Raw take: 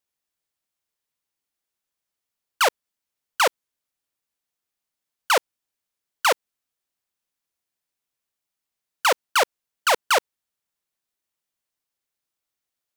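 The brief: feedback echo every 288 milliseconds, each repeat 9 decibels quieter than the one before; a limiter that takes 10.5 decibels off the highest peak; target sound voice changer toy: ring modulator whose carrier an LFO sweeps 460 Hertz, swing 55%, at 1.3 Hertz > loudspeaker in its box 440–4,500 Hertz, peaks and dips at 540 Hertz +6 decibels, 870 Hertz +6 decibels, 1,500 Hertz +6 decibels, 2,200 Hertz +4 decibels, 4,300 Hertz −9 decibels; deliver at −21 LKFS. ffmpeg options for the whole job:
ffmpeg -i in.wav -af "alimiter=limit=-22dB:level=0:latency=1,aecho=1:1:288|576|864|1152:0.355|0.124|0.0435|0.0152,aeval=exprs='val(0)*sin(2*PI*460*n/s+460*0.55/1.3*sin(2*PI*1.3*n/s))':channel_layout=same,highpass=440,equalizer=frequency=540:width_type=q:width=4:gain=6,equalizer=frequency=870:width_type=q:width=4:gain=6,equalizer=frequency=1500:width_type=q:width=4:gain=6,equalizer=frequency=2200:width_type=q:width=4:gain=4,equalizer=frequency=4300:width_type=q:width=4:gain=-9,lowpass=frequency=4500:width=0.5412,lowpass=frequency=4500:width=1.3066,volume=13.5dB" out.wav

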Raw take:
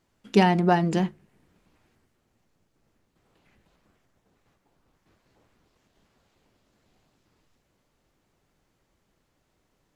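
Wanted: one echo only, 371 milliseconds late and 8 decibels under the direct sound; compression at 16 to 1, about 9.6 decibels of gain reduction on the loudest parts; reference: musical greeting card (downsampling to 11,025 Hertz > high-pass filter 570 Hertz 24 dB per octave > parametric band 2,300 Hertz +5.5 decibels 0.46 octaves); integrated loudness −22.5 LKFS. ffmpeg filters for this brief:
ffmpeg -i in.wav -af "acompressor=threshold=-21dB:ratio=16,aecho=1:1:371:0.398,aresample=11025,aresample=44100,highpass=frequency=570:width=0.5412,highpass=frequency=570:width=1.3066,equalizer=frequency=2300:width_type=o:width=0.46:gain=5.5,volume=12.5dB" out.wav

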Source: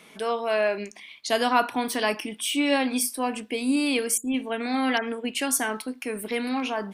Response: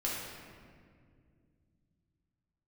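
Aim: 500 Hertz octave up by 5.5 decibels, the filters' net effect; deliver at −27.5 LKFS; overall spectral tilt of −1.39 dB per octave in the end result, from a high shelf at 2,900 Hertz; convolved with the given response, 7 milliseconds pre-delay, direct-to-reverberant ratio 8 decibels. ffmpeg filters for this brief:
-filter_complex "[0:a]equalizer=frequency=500:width_type=o:gain=6.5,highshelf=frequency=2900:gain=5.5,asplit=2[link_01][link_02];[1:a]atrim=start_sample=2205,adelay=7[link_03];[link_02][link_03]afir=irnorm=-1:irlink=0,volume=-13dB[link_04];[link_01][link_04]amix=inputs=2:normalize=0,volume=-6dB"

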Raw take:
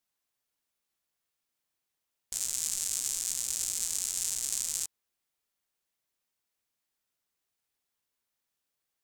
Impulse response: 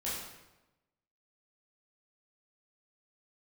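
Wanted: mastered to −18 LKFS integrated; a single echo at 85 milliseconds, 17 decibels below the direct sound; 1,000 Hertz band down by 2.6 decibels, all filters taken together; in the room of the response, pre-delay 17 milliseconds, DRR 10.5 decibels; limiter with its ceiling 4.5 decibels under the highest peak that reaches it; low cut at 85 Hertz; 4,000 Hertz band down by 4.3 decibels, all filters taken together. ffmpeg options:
-filter_complex "[0:a]highpass=85,equalizer=frequency=1000:width_type=o:gain=-3,equalizer=frequency=4000:width_type=o:gain=-6,alimiter=limit=-18dB:level=0:latency=1,aecho=1:1:85:0.141,asplit=2[link_01][link_02];[1:a]atrim=start_sample=2205,adelay=17[link_03];[link_02][link_03]afir=irnorm=-1:irlink=0,volume=-14dB[link_04];[link_01][link_04]amix=inputs=2:normalize=0,volume=16dB"

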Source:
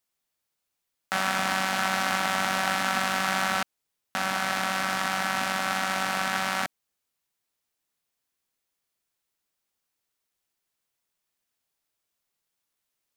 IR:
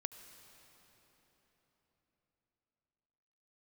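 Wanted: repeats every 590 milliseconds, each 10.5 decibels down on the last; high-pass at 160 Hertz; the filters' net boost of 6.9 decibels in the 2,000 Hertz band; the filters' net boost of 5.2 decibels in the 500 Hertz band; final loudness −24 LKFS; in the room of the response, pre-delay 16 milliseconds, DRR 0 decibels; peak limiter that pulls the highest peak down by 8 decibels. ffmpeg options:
-filter_complex "[0:a]highpass=160,equalizer=frequency=500:width_type=o:gain=6,equalizer=frequency=2000:width_type=o:gain=8.5,alimiter=limit=-13dB:level=0:latency=1,aecho=1:1:590|1180|1770:0.299|0.0896|0.0269,asplit=2[link_01][link_02];[1:a]atrim=start_sample=2205,adelay=16[link_03];[link_02][link_03]afir=irnorm=-1:irlink=0,volume=2.5dB[link_04];[link_01][link_04]amix=inputs=2:normalize=0,volume=-1dB"

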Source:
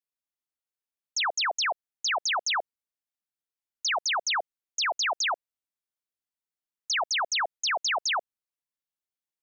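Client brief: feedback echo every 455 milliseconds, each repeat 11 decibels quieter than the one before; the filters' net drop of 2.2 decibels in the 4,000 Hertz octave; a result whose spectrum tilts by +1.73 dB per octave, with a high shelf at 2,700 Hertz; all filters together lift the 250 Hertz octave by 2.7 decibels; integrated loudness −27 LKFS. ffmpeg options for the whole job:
ffmpeg -i in.wav -af "equalizer=frequency=250:width_type=o:gain=4,highshelf=frequency=2700:gain=3.5,equalizer=frequency=4000:width_type=o:gain=-6,aecho=1:1:455|910|1365:0.282|0.0789|0.0221,volume=1dB" out.wav

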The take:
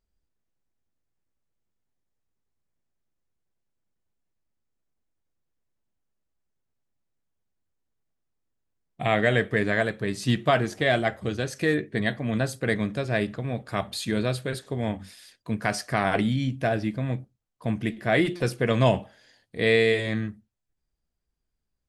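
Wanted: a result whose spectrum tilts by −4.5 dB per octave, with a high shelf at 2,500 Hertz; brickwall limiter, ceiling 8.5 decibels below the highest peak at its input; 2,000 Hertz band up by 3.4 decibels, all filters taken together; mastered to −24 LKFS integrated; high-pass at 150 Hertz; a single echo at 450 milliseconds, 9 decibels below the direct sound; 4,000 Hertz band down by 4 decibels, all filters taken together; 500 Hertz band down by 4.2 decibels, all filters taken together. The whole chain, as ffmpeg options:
ffmpeg -i in.wav -af "highpass=150,equalizer=frequency=500:width_type=o:gain=-5.5,equalizer=frequency=2000:width_type=o:gain=6.5,highshelf=frequency=2500:gain=-3,equalizer=frequency=4000:width_type=o:gain=-5,alimiter=limit=-16dB:level=0:latency=1,aecho=1:1:450:0.355,volume=5.5dB" out.wav

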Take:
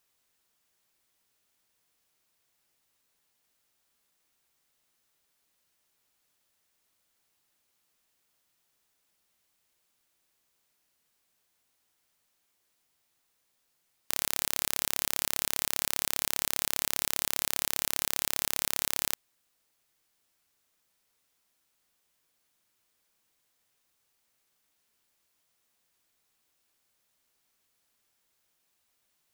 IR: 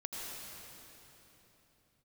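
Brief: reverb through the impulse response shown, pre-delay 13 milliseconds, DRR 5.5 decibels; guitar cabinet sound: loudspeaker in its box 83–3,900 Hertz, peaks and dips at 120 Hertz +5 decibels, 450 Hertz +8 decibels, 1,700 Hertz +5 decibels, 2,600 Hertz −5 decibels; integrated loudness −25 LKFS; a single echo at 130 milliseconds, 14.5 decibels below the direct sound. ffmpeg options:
-filter_complex "[0:a]aecho=1:1:130:0.188,asplit=2[link_01][link_02];[1:a]atrim=start_sample=2205,adelay=13[link_03];[link_02][link_03]afir=irnorm=-1:irlink=0,volume=-6.5dB[link_04];[link_01][link_04]amix=inputs=2:normalize=0,highpass=83,equalizer=frequency=120:width_type=q:width=4:gain=5,equalizer=frequency=450:width_type=q:width=4:gain=8,equalizer=frequency=1700:width_type=q:width=4:gain=5,equalizer=frequency=2600:width_type=q:width=4:gain=-5,lowpass=frequency=3900:width=0.5412,lowpass=frequency=3900:width=1.3066,volume=12dB"

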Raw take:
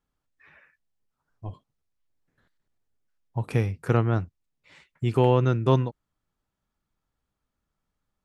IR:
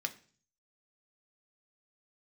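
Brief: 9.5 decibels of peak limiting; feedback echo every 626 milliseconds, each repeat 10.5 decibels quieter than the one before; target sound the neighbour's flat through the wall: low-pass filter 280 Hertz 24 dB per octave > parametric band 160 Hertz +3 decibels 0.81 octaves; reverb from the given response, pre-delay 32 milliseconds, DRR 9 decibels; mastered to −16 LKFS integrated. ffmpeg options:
-filter_complex "[0:a]alimiter=limit=-16dB:level=0:latency=1,aecho=1:1:626|1252|1878:0.299|0.0896|0.0269,asplit=2[link_01][link_02];[1:a]atrim=start_sample=2205,adelay=32[link_03];[link_02][link_03]afir=irnorm=-1:irlink=0,volume=-10.5dB[link_04];[link_01][link_04]amix=inputs=2:normalize=0,lowpass=frequency=280:width=0.5412,lowpass=frequency=280:width=1.3066,equalizer=frequency=160:width_type=o:width=0.81:gain=3,volume=14.5dB"

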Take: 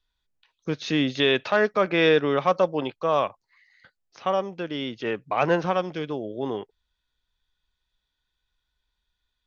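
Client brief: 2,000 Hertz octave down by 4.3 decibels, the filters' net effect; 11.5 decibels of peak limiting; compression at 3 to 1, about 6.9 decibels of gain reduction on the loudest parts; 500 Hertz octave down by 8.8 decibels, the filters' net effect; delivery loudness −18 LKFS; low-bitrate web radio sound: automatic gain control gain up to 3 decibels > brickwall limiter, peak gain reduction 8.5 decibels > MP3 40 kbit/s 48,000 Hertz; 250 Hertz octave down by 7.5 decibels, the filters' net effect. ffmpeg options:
ffmpeg -i in.wav -af "equalizer=frequency=250:width_type=o:gain=-7,equalizer=frequency=500:width_type=o:gain=-8.5,equalizer=frequency=2000:width_type=o:gain=-5,acompressor=threshold=-30dB:ratio=3,alimiter=level_in=4dB:limit=-24dB:level=0:latency=1,volume=-4dB,dynaudnorm=maxgain=3dB,alimiter=level_in=12.5dB:limit=-24dB:level=0:latency=1,volume=-12.5dB,volume=29.5dB" -ar 48000 -c:a libmp3lame -b:a 40k out.mp3

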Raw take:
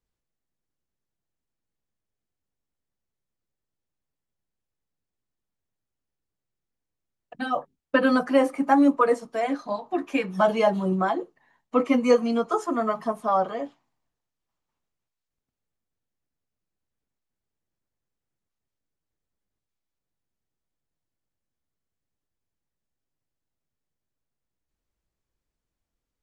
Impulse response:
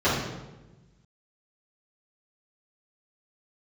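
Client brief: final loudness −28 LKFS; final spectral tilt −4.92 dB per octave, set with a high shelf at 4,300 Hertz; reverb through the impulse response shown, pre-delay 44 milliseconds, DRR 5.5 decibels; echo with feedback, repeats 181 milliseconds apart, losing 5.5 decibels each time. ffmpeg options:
-filter_complex "[0:a]highshelf=frequency=4300:gain=6,aecho=1:1:181|362|543|724|905|1086|1267:0.531|0.281|0.149|0.079|0.0419|0.0222|0.0118,asplit=2[link_01][link_02];[1:a]atrim=start_sample=2205,adelay=44[link_03];[link_02][link_03]afir=irnorm=-1:irlink=0,volume=-23dB[link_04];[link_01][link_04]amix=inputs=2:normalize=0,volume=-8dB"

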